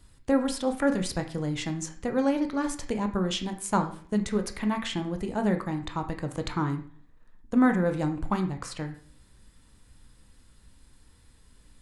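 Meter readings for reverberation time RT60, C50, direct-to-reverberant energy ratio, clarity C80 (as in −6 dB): 0.55 s, 10.0 dB, 4.5 dB, 15.0 dB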